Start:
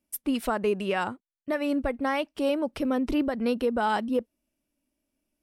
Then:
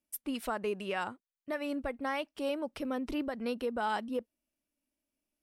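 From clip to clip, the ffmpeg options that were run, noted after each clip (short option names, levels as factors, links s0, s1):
-af "lowshelf=f=490:g=-5,volume=0.531"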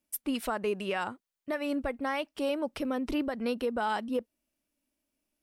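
-af "alimiter=level_in=1.26:limit=0.0631:level=0:latency=1:release=200,volume=0.794,volume=1.68"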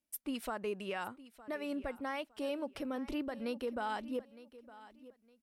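-af "aecho=1:1:911|1822:0.133|0.0347,volume=0.447"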